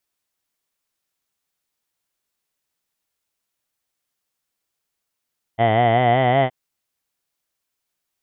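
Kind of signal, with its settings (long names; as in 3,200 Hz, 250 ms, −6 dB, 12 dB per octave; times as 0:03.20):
vowel from formants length 0.92 s, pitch 110 Hz, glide +3.5 semitones, F1 710 Hz, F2 2,000 Hz, F3 3,100 Hz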